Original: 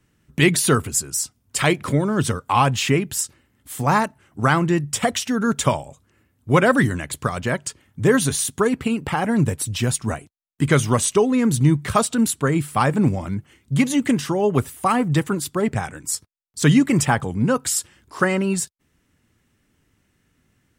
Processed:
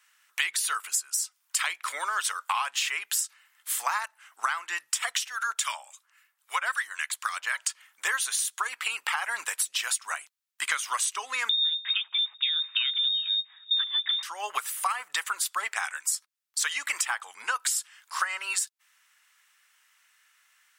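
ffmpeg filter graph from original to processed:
-filter_complex "[0:a]asettb=1/sr,asplit=3[s0][s1][s2];[s0]atrim=end=5.274[s3];[s1]atrim=start=5.27:end=7.56,asetpts=PTS-STARTPTS,afade=t=in:d=0.004:c=qsin,afade=t=out:st=2.286:d=0.004:c=qsin,highpass=f=740:p=1,acrossover=split=1200[s4][s5];[s4]aeval=exprs='val(0)*(1-0.7/2+0.7/2*cos(2*PI*3.7*n/s))':c=same[s6];[s5]aeval=exprs='val(0)*(1-0.7/2-0.7/2*cos(2*PI*3.7*n/s))':c=same[s7];[s6][s7]amix=inputs=2:normalize=0[s8];[s2]atrim=start=7.556[s9];[s3][s8]acrossfade=d=0.004:c1=hsin:c2=qsin[s10];[s10][s9]acrossfade=d=0.004:c1=qsin:c2=hsin,asettb=1/sr,asplit=3[s11][s12][s13];[s11]atrim=end=11.494[s14];[s12]atrim=start=11.49:end=14.23,asetpts=PTS-STARTPTS,afade=t=in:d=0.004:c=qsin,afade=t=out:st=2.736:d=0.004:c=qsin,equalizer=f=98:t=o:w=0.9:g=13,lowpass=f=3200:t=q:w=0.5098,lowpass=f=3200:t=q:w=0.6013,lowpass=f=3200:t=q:w=0.9,lowpass=f=3200:t=q:w=2.563,afreqshift=-3800[s15];[s13]atrim=start=14.226[s16];[s14][s15]acrossfade=d=0.004:c1=hsin:c2=qsin[s17];[s17][s16]acrossfade=d=0.004:c1=qsin:c2=hsin,highpass=f=1100:w=0.5412,highpass=f=1100:w=1.3066,acompressor=threshold=0.0251:ratio=10,volume=2.24"

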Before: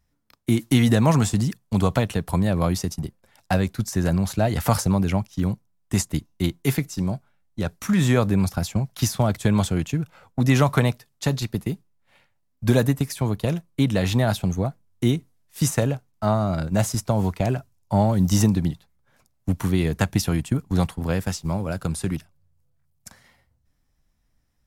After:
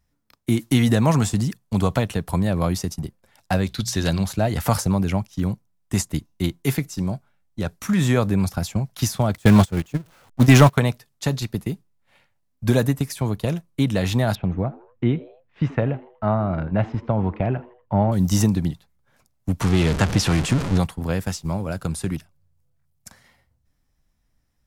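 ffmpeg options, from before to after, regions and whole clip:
-filter_complex "[0:a]asettb=1/sr,asplit=3[s0][s1][s2];[s0]atrim=end=3.664[s3];[s1]atrim=start=3.66:end=4.24,asetpts=PTS-STARTPTS,afade=t=in:d=0.004:c=qsin,afade=t=out:st=0.576:d=0.004:c=qsin,equalizer=f=3700:t=o:w=1.1:g=15,bandreject=f=60:t=h:w=6,bandreject=f=120:t=h:w=6,bandreject=f=180:t=h:w=6[s4];[s2]atrim=start=4.236[s5];[s3][s4]acrossfade=d=0.004:c1=hsin:c2=qsin[s6];[s6][s5]acrossfade=d=0.004:c1=qsin:c2=hsin,asettb=1/sr,asplit=3[s7][s8][s9];[s7]atrim=end=9.354[s10];[s8]atrim=start=9.35:end=10.78,asetpts=PTS-STARTPTS,afade=t=in:d=0.004:c=qsin,afade=t=out:st=1.426:d=0.004:c=qsin,aeval=exprs='val(0)+0.5*0.0447*sgn(val(0))':c=same,agate=range=0.0355:threshold=0.112:ratio=16:release=100:detection=peak,acontrast=85[s11];[s9]atrim=start=10.776[s12];[s10][s11]acrossfade=d=0.004:c1=hsin:c2=qsin[s13];[s13][s12]acrossfade=d=0.004:c1=qsin:c2=hsin,asettb=1/sr,asplit=3[s14][s15][s16];[s14]atrim=end=14.354[s17];[s15]atrim=start=14.35:end=18.12,asetpts=PTS-STARTPTS,afade=t=in:d=0.004:c=qsin,afade=t=out:st=3.766:d=0.004:c=qsin,lowpass=f=2600:w=0.5412,lowpass=f=2600:w=1.3066,asplit=4[s18][s19][s20][s21];[s19]adelay=80,afreqshift=120,volume=0.0944[s22];[s20]adelay=160,afreqshift=240,volume=0.0437[s23];[s21]adelay=240,afreqshift=360,volume=0.02[s24];[s18][s22][s23][s24]amix=inputs=4:normalize=0,atrim=end_sample=166257[s25];[s16]atrim=start=18.116[s26];[s17][s25]acrossfade=d=0.004:c1=hsin:c2=qsin[s27];[s27][s26]acrossfade=d=0.004:c1=qsin:c2=hsin,asettb=1/sr,asplit=3[s28][s29][s30];[s28]atrim=end=19.614[s31];[s29]atrim=start=19.61:end=20.78,asetpts=PTS-STARTPTS,afade=t=in:d=0.004:c=qsin,afade=t=out:st=1.166:d=0.004:c=qsin,aeval=exprs='val(0)+0.5*0.1*sgn(val(0))':c=same,lowpass=7300[s32];[s30]atrim=start=20.776[s33];[s31][s32]acrossfade=d=0.004:c1=hsin:c2=qsin[s34];[s34][s33]acrossfade=d=0.004:c1=qsin:c2=hsin"

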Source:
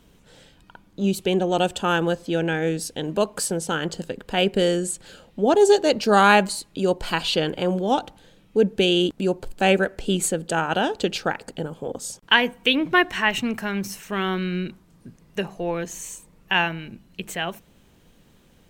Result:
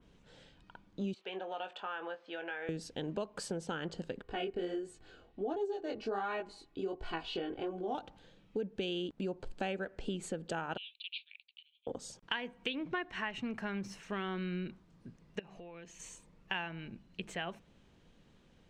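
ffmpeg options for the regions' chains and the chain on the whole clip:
-filter_complex "[0:a]asettb=1/sr,asplit=3[s0][s1][s2];[s0]atrim=end=1.144[s3];[s1]atrim=start=1.14:end=2.69,asetpts=PTS-STARTPTS,afade=t=in:d=0.004:c=qsin,afade=t=out:st=1.546:d=0.004:c=qsin,highpass=780,lowpass=2700,acompressor=threshold=0.0355:ratio=2.5:attack=3.2:release=140:knee=1:detection=peak,asplit=2[s4][s5];[s5]adelay=21,volume=0.398[s6];[s4][s6]amix=inputs=2:normalize=0,atrim=end_sample=68355[s7];[s2]atrim=start=2.686[s8];[s3][s7]acrossfade=d=0.004:c1=hsin:c2=qsin[s9];[s9][s8]acrossfade=d=0.004:c1=qsin:c2=hsin,asettb=1/sr,asplit=3[s10][s11][s12];[s10]atrim=end=4.224[s13];[s11]atrim=start=4.22:end=7.95,asetpts=PTS-STARTPTS,afade=t=in:d=0.004:c=qsin,afade=t=out:st=3.726:d=0.004:c=qsin,highshelf=f=2900:g=-10.5,aecho=1:1:2.7:0.61,atrim=end_sample=164493,flanger=delay=17.5:depth=5.7:speed=1.4[s14];[s12]atrim=start=7.946[s15];[s13][s14]acrossfade=d=0.004:c1=hsin:c2=qsin[s16];[s16][s15]acrossfade=d=0.004:c1=qsin:c2=hsin,asettb=1/sr,asplit=3[s17][s18][s19];[s17]atrim=end=10.774[s20];[s18]atrim=start=10.77:end=11.87,asetpts=PTS-STARTPTS,afade=t=in:d=0.004:c=qsin,afade=t=out:st=1.096:d=0.004:c=qsin,agate=range=0.0224:threshold=0.0112:ratio=3:release=100:detection=peak,asuperpass=centerf=3100:order=12:qfactor=1.7[s21];[s19]atrim=start=11.866[s22];[s20][s21]acrossfade=d=0.004:c1=hsin:c2=qsin[s23];[s23][s22]acrossfade=d=0.004:c1=qsin:c2=hsin,asettb=1/sr,asplit=3[s24][s25][s26];[s24]atrim=end=15.394[s27];[s25]atrim=start=15.39:end=16,asetpts=PTS-STARTPTS,afade=t=in:d=0.004:c=qsin,afade=t=out:st=0.606:d=0.004:c=qsin,equalizer=f=2600:t=o:w=0.61:g=8,acompressor=threshold=0.01:ratio=6:attack=3.2:release=140:knee=1:detection=peak[s28];[s26]atrim=start=15.996[s29];[s27][s28]acrossfade=d=0.004:c1=hsin:c2=qsin[s30];[s30][s29]acrossfade=d=0.004:c1=qsin:c2=hsin,lowpass=5500,acompressor=threshold=0.0501:ratio=6,adynamicequalizer=threshold=0.00562:dfrequency=2800:dqfactor=0.7:tfrequency=2800:tqfactor=0.7:attack=5:release=100:ratio=0.375:range=2.5:mode=cutabove:tftype=highshelf,volume=0.398"

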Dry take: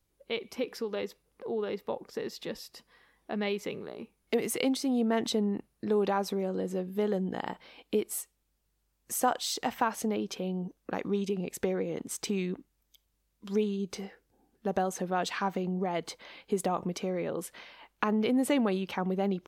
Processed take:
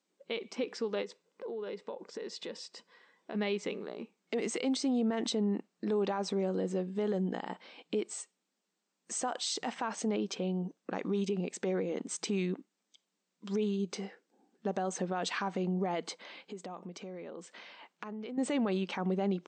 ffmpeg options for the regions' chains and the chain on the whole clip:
-filter_complex "[0:a]asettb=1/sr,asplit=3[s0][s1][s2];[s0]atrim=end=1.024[s3];[s1]atrim=start=1.02:end=3.35,asetpts=PTS-STARTPTS,afade=t=in:d=0.004:c=qsin,afade=t=out:st=2.326:d=0.004:c=qsin,aecho=1:1:2:0.3,atrim=end_sample=102753,acompressor=threshold=0.0141:ratio=4:attack=3.2:release=140:knee=1:detection=peak[s4];[s2]atrim=start=3.346[s5];[s3][s4]acrossfade=d=0.004:c1=hsin:c2=qsin[s6];[s6][s5]acrossfade=d=0.004:c1=qsin:c2=hsin,asettb=1/sr,asplit=3[s7][s8][s9];[s7]atrim=end=16.424[s10];[s8]atrim=start=16.42:end=18.38,asetpts=PTS-STARTPTS,afade=t=in:d=0.004:c=qsin,afade=t=out:st=1.956:d=0.004:c=qsin,equalizer=f=8900:t=o:w=0.35:g=-2.5,acompressor=threshold=0.00501:ratio=2.5:attack=3.2:release=140:knee=1:detection=peak[s11];[s9]atrim=start=18.376[s12];[s10][s11]acrossfade=d=0.004:c1=hsin:c2=qsin[s13];[s13][s12]acrossfade=d=0.004:c1=qsin:c2=hsin,afftfilt=real='re*between(b*sr/4096,170,8600)':imag='im*between(b*sr/4096,170,8600)':win_size=4096:overlap=0.75,alimiter=limit=0.0631:level=0:latency=1:release=42"

